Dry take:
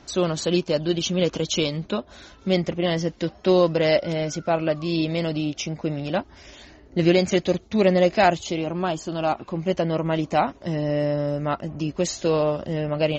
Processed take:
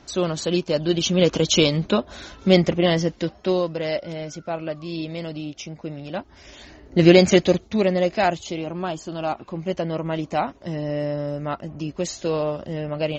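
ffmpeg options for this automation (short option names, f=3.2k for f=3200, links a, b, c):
-af "volume=18.5dB,afade=t=in:st=0.63:d=0.93:silence=0.473151,afade=t=out:st=2.6:d=1.06:silence=0.251189,afade=t=in:st=6.12:d=1.14:silence=0.237137,afade=t=out:st=7.26:d=0.62:silence=0.354813"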